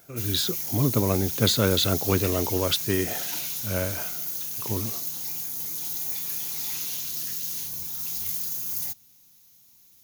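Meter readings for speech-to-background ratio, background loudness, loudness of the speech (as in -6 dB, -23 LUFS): 2.0 dB, -28.0 LUFS, -26.0 LUFS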